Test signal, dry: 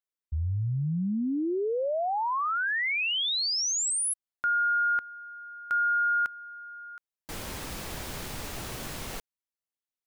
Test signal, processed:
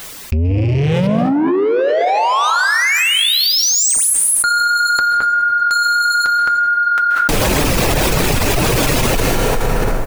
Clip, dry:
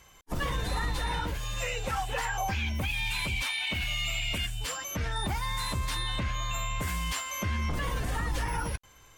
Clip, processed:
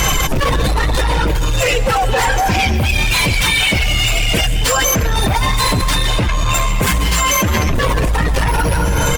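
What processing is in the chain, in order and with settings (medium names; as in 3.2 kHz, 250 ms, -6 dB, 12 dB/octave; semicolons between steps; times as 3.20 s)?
rattle on loud lows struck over -42 dBFS, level -32 dBFS; echo from a far wall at 37 m, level -16 dB; saturation -35.5 dBFS; gain riding within 5 dB 0.5 s; flange 1.6 Hz, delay 5.8 ms, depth 2.3 ms, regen -49%; dynamic bell 480 Hz, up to +6 dB, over -57 dBFS, Q 0.9; de-hum 168.9 Hz, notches 8; reverb removal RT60 1.1 s; bass shelf 180 Hz +5.5 dB; plate-style reverb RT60 1.2 s, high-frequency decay 0.75×, pre-delay 120 ms, DRR 8 dB; loudness maximiser +32 dB; level flattener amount 100%; trim -9.5 dB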